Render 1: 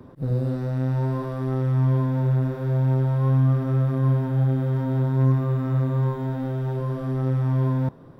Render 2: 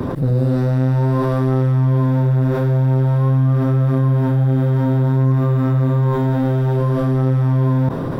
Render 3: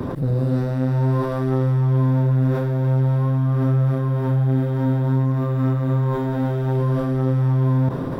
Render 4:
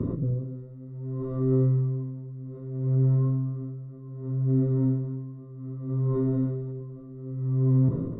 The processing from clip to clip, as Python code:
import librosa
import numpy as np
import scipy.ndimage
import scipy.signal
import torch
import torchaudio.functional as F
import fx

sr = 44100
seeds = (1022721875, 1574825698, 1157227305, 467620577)

y1 = fx.env_flatten(x, sr, amount_pct=70)
y1 = y1 * 10.0 ** (3.0 / 20.0)
y2 = y1 + 10.0 ** (-10.0 / 20.0) * np.pad(y1, (int(298 * sr / 1000.0), 0))[:len(y1)]
y2 = y2 * 10.0 ** (-4.0 / 20.0)
y3 = np.convolve(y2, np.full(55, 1.0 / 55))[:len(y2)]
y3 = fx.doubler(y3, sr, ms=18.0, db=-7)
y3 = y3 * 10.0 ** (-19 * (0.5 - 0.5 * np.cos(2.0 * np.pi * 0.64 * np.arange(len(y3)) / sr)) / 20.0)